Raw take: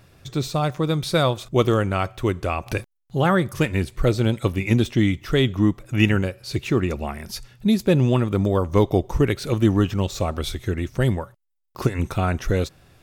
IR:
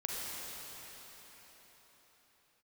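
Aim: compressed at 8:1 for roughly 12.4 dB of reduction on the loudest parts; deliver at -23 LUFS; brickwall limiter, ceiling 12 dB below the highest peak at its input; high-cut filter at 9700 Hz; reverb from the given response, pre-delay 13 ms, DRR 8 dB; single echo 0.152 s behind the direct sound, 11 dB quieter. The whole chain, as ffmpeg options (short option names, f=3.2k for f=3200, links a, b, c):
-filter_complex "[0:a]lowpass=9.7k,acompressor=threshold=-26dB:ratio=8,alimiter=level_in=3.5dB:limit=-24dB:level=0:latency=1,volume=-3.5dB,aecho=1:1:152:0.282,asplit=2[a][b];[1:a]atrim=start_sample=2205,adelay=13[c];[b][c]afir=irnorm=-1:irlink=0,volume=-12dB[d];[a][d]amix=inputs=2:normalize=0,volume=14dB"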